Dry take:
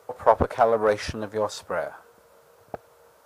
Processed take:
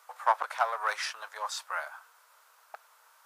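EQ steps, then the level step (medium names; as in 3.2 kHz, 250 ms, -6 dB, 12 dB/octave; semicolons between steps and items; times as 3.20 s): high-pass 970 Hz 24 dB/octave; 0.0 dB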